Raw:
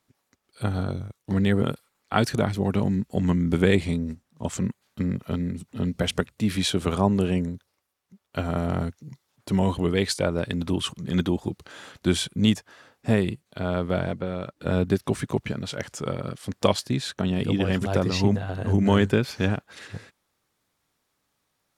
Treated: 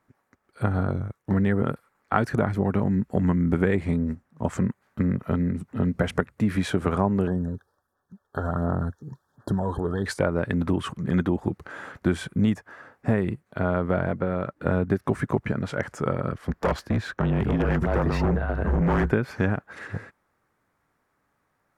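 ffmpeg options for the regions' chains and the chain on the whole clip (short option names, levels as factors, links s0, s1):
-filter_complex "[0:a]asettb=1/sr,asplit=3[s0][s1][s2];[s0]atrim=end=7.274[s3];[s1]atrim=start=7.27:end=10.06,asetpts=PTS-STARTPTS,afade=t=in:d=0.004:c=qsin,afade=t=out:st=2.786:d=0.004:c=qsin,acompressor=threshold=0.0398:ratio=3:attack=3.2:release=140:knee=1:detection=peak,aphaser=in_gain=1:out_gain=1:delay=2.5:decay=0.43:speed=1.4:type=sinusoidal,asuperstop=centerf=2400:order=20:qfactor=1.8[s4];[s2]atrim=start=10.056[s5];[s3][s4]acrossfade=d=0.004:c1=hsin:c2=qsin[s6];[s6][s5]acrossfade=d=0.004:c1=qsin:c2=hsin,asettb=1/sr,asplit=3[s7][s8][s9];[s7]atrim=end=16.324[s10];[s8]atrim=start=16.32:end=19.12,asetpts=PTS-STARTPTS,afade=t=in:d=0.004:c=qsin,afade=t=out:st=2.796:d=0.004:c=qsin,equalizer=f=9000:w=1.3:g=-7,afreqshift=-28,asoftclip=type=hard:threshold=0.0794[s11];[s9]atrim=start=19.116[s12];[s10][s11]acrossfade=d=0.004:c1=hsin:c2=qsin[s13];[s13][s12]acrossfade=d=0.004:c1=qsin:c2=hsin,highshelf=f=2400:t=q:w=1.5:g=-11.5,acompressor=threshold=0.0631:ratio=3,volume=1.68"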